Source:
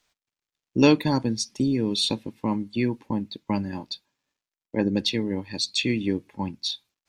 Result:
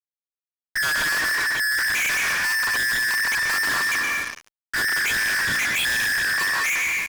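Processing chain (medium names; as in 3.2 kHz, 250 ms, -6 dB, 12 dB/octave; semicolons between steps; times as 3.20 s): every band turned upside down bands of 2 kHz; 3.18–3.71 s: comb 6.6 ms, depth 52%; level rider gain up to 17 dB; on a send at -8 dB: reverberation RT60 1.1 s, pre-delay 80 ms; on the sum: resampled via 8 kHz; fuzz box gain 45 dB, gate -46 dBFS; trim -8.5 dB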